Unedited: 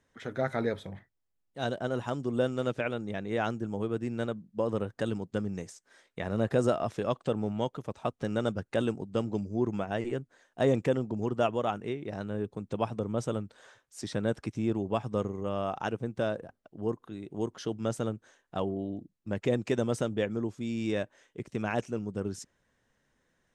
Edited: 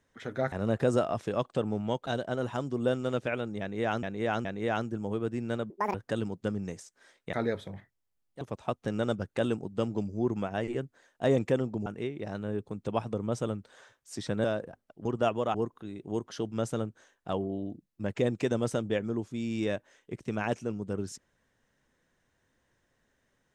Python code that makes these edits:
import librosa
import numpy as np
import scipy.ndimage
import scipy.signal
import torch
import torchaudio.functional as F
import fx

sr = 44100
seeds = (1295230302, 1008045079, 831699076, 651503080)

y = fx.edit(x, sr, fx.swap(start_s=0.52, length_s=1.08, other_s=6.23, other_length_s=1.55),
    fx.repeat(start_s=3.14, length_s=0.42, count=3),
    fx.speed_span(start_s=4.39, length_s=0.45, speed=1.86),
    fx.move(start_s=11.23, length_s=0.49, to_s=16.81),
    fx.cut(start_s=14.3, length_s=1.9), tone=tone)